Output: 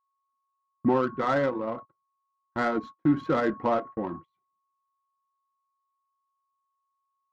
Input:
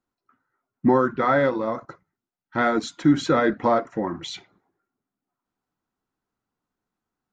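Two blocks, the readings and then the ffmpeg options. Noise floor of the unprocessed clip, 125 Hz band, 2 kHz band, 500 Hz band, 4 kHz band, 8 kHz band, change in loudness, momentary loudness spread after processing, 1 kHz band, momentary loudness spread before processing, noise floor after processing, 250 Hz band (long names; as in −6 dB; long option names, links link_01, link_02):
below −85 dBFS, −5.0 dB, −6.5 dB, −5.0 dB, −11.5 dB, can't be measured, −5.5 dB, 11 LU, −5.5 dB, 13 LU, −80 dBFS, −5.0 dB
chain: -af "adynamicsmooth=sensitivity=1:basefreq=1300,aeval=exprs='val(0)+0.0126*sin(2*PI*1100*n/s)':channel_layout=same,agate=range=-34dB:threshold=-33dB:ratio=16:detection=peak,volume=-5dB"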